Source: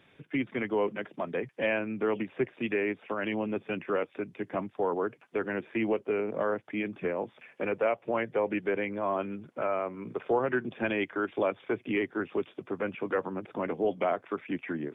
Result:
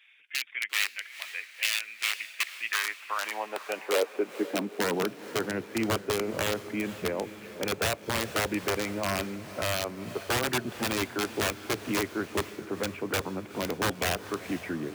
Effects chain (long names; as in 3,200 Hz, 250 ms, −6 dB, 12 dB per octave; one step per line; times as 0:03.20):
wrap-around overflow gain 21.5 dB
high-pass filter sweep 2,300 Hz → 76 Hz, 0:02.37–0:05.84
feedback delay with all-pass diffusion 470 ms, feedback 54%, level −14 dB